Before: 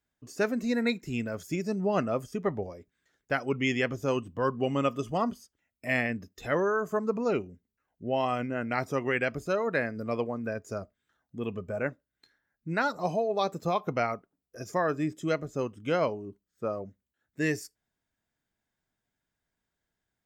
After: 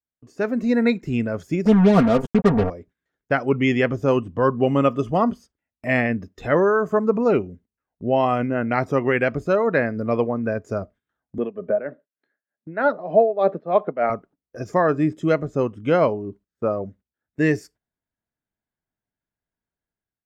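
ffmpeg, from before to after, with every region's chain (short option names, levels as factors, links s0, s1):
-filter_complex "[0:a]asettb=1/sr,asplit=3[s0][s1][s2];[s0]atrim=end=1.654[s3];[s1]atrim=start=1.65:end=2.7,asetpts=PTS-STARTPTS,afade=t=in:d=0.004:c=qsin,afade=t=out:st=1.046:d=0.004:c=qsin,equalizer=f=99:t=o:w=1.5:g=14,acrusher=bits=4:mix=0:aa=0.5,aecho=1:1:4.3:0.75,atrim=end_sample=46305[s4];[s2]atrim=start=2.696[s5];[s3][s4]acrossfade=d=0.004:c1=hsin:c2=qsin[s6];[s6][s5]acrossfade=d=0.004:c1=qsin:c2=hsin,asettb=1/sr,asplit=3[s7][s8][s9];[s7]atrim=end=11.384[s10];[s8]atrim=start=11.38:end=14.1,asetpts=PTS-STARTPTS,afade=t=in:d=0.004:c=qsin,afade=t=out:st=2.716:d=0.004:c=qsin,highpass=f=170:w=0.5412,highpass=f=170:w=1.3066,equalizer=f=410:t=q:w=4:g=4,equalizer=f=610:t=q:w=4:g=9,equalizer=f=980:t=q:w=4:g=-3,equalizer=f=1700:t=q:w=4:g=5,equalizer=f=2600:t=q:w=4:g=-4,lowpass=f=3400:w=0.5412,lowpass=f=3400:w=1.3066,tremolo=f=3.3:d=0.84[s11];[s9]atrim=start=14.096[s12];[s10][s11]acrossfade=d=0.004:c1=hsin:c2=qsin[s13];[s13][s12]acrossfade=d=0.004:c1=qsin:c2=hsin,lowpass=f=1500:p=1,agate=range=0.2:threshold=0.00141:ratio=16:detection=peak,dynaudnorm=f=200:g=5:m=3.16"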